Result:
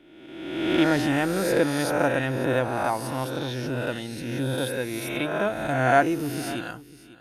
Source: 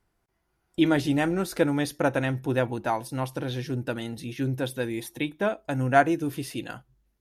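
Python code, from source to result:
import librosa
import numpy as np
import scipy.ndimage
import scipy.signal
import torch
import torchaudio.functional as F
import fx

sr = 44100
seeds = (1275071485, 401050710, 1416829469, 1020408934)

p1 = fx.spec_swells(x, sr, rise_s=1.29)
p2 = p1 + fx.echo_single(p1, sr, ms=545, db=-17.5, dry=0)
y = p2 * 10.0 ** (-1.5 / 20.0)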